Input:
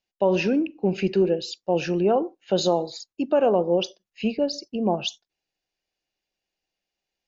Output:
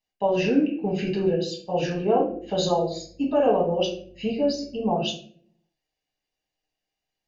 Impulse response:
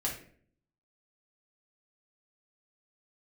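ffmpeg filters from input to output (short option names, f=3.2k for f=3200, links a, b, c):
-filter_complex "[0:a]asettb=1/sr,asplit=3[a][b][c];[a]atrim=end=2.214[d];[b]atrim=start=2.21:end=4.87,asetpts=PTS-STARTPTS,afade=t=in:d=0.004:c=qsin,afade=t=out:st=2.656:d=0.004:c=qsin,aeval=exprs='val(0)+0.002*(sin(2*PI*50*n/s)+sin(2*PI*2*50*n/s)/2+sin(2*PI*3*50*n/s)/3+sin(2*PI*4*50*n/s)/4+sin(2*PI*5*50*n/s)/5)':c=same[e];[c]atrim=start=4.866[f];[d][e]acrossfade=d=0.004:c1=hsin:c2=qsin[g];[g][f]acrossfade=d=0.004:c1=qsin:c2=hsin[h];[1:a]atrim=start_sample=2205[i];[h][i]afir=irnorm=-1:irlink=0,volume=-4.5dB"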